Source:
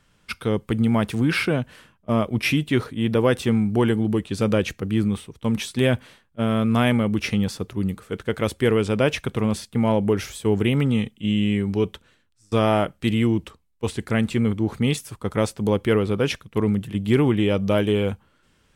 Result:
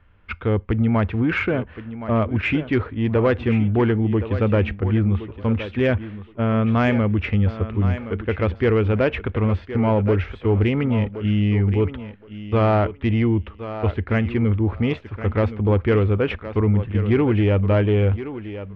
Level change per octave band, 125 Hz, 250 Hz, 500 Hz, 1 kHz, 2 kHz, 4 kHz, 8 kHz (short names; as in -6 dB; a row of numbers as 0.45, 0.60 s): +5.0 dB, 0.0 dB, +1.0 dB, +1.5 dB, +1.0 dB, -7.0 dB, under -25 dB